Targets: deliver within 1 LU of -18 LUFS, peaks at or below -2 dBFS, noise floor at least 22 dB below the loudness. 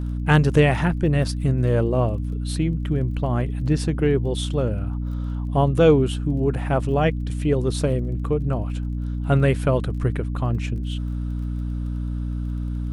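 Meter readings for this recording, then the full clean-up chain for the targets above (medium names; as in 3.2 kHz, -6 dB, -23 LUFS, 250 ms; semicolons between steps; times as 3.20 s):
tick rate 23 per s; hum 60 Hz; highest harmonic 300 Hz; hum level -24 dBFS; loudness -22.5 LUFS; peak level -4.5 dBFS; loudness target -18.0 LUFS
-> de-click; hum notches 60/120/180/240/300 Hz; trim +4.5 dB; peak limiter -2 dBFS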